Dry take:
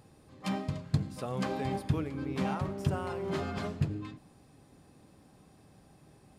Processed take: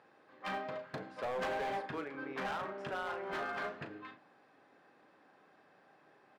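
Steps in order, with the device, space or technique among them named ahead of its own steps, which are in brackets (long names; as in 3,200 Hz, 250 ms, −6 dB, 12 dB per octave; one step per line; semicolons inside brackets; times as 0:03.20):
0:00.64–0:01.86: dynamic equaliser 580 Hz, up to +7 dB, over −48 dBFS, Q 1.1
megaphone (band-pass filter 480–2,700 Hz; parametric band 1,600 Hz +7.5 dB 0.54 octaves; hard clipping −33.5 dBFS, distortion −10 dB; double-tracking delay 37 ms −10.5 dB)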